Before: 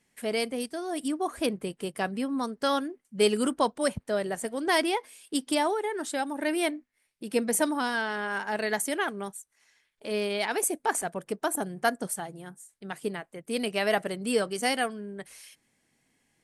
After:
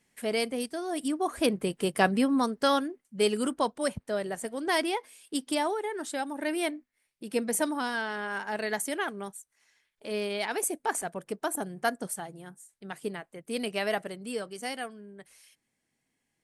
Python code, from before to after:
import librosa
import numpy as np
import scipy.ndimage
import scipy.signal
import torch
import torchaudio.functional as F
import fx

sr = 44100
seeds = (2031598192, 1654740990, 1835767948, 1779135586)

y = fx.gain(x, sr, db=fx.line((1.15, 0.0), (2.07, 7.0), (3.22, -2.5), (13.78, -2.5), (14.35, -8.5)))